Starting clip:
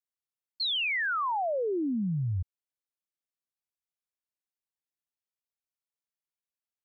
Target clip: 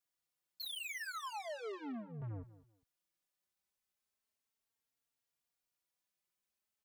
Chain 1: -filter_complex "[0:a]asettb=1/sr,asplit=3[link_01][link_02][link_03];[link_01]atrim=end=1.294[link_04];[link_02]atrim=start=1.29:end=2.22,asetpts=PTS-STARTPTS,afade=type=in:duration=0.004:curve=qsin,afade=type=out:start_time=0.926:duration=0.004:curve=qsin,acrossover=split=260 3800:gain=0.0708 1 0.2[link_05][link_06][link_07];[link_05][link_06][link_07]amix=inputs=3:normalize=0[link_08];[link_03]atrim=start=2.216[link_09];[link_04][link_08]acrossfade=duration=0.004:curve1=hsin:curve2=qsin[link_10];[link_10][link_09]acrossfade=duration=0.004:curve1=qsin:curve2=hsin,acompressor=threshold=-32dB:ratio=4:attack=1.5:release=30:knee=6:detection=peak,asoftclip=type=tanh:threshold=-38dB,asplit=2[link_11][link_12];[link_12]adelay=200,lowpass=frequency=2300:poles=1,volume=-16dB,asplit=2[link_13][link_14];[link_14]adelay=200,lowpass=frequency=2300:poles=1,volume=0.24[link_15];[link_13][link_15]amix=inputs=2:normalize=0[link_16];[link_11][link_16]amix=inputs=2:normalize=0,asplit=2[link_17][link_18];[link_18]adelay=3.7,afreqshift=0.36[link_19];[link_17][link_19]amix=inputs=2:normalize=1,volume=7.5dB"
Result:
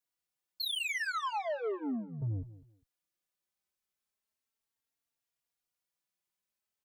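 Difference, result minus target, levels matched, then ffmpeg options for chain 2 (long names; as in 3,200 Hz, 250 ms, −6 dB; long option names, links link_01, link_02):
soft clipping: distortion −5 dB
-filter_complex "[0:a]asettb=1/sr,asplit=3[link_01][link_02][link_03];[link_01]atrim=end=1.294[link_04];[link_02]atrim=start=1.29:end=2.22,asetpts=PTS-STARTPTS,afade=type=in:duration=0.004:curve=qsin,afade=type=out:start_time=0.926:duration=0.004:curve=qsin,acrossover=split=260 3800:gain=0.0708 1 0.2[link_05][link_06][link_07];[link_05][link_06][link_07]amix=inputs=3:normalize=0[link_08];[link_03]atrim=start=2.216[link_09];[link_04][link_08]acrossfade=duration=0.004:curve1=hsin:curve2=qsin[link_10];[link_10][link_09]acrossfade=duration=0.004:curve1=qsin:curve2=hsin,acompressor=threshold=-32dB:ratio=4:attack=1.5:release=30:knee=6:detection=peak,asoftclip=type=tanh:threshold=-48dB,asplit=2[link_11][link_12];[link_12]adelay=200,lowpass=frequency=2300:poles=1,volume=-16dB,asplit=2[link_13][link_14];[link_14]adelay=200,lowpass=frequency=2300:poles=1,volume=0.24[link_15];[link_13][link_15]amix=inputs=2:normalize=0[link_16];[link_11][link_16]amix=inputs=2:normalize=0,asplit=2[link_17][link_18];[link_18]adelay=3.7,afreqshift=0.36[link_19];[link_17][link_19]amix=inputs=2:normalize=1,volume=7.5dB"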